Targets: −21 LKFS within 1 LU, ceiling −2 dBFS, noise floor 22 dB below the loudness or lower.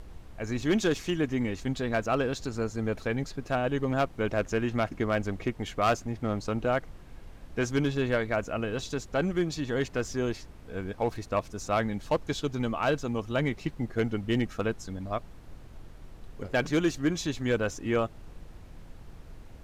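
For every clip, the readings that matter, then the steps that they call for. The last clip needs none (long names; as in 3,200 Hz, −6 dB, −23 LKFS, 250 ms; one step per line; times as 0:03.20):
share of clipped samples 0.4%; peaks flattened at −18.0 dBFS; background noise floor −48 dBFS; target noise floor −52 dBFS; integrated loudness −30.0 LKFS; sample peak −18.0 dBFS; target loudness −21.0 LKFS
→ clipped peaks rebuilt −18 dBFS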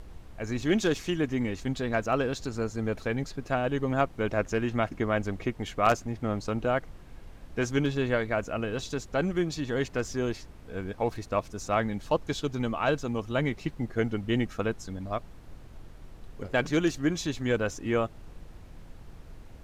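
share of clipped samples 0.0%; background noise floor −48 dBFS; target noise floor −52 dBFS
→ noise reduction from a noise print 6 dB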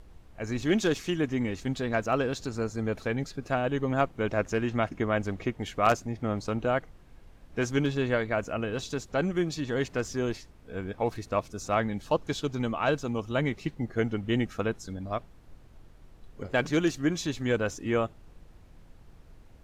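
background noise floor −53 dBFS; integrated loudness −30.0 LKFS; sample peak −9.0 dBFS; target loudness −21.0 LKFS
→ level +9 dB
brickwall limiter −2 dBFS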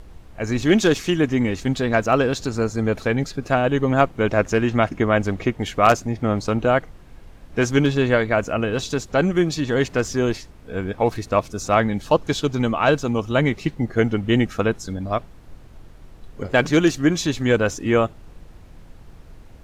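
integrated loudness −21.0 LKFS; sample peak −2.0 dBFS; background noise floor −44 dBFS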